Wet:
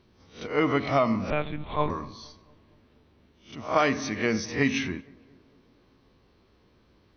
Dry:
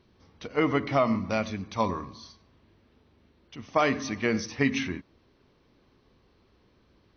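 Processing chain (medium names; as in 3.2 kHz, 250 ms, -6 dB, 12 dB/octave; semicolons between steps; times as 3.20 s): reverse spectral sustain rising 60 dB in 0.35 s; 1.30–1.90 s: monotone LPC vocoder at 8 kHz 150 Hz; on a send: filtered feedback delay 231 ms, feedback 56%, low-pass 1.4 kHz, level -23.5 dB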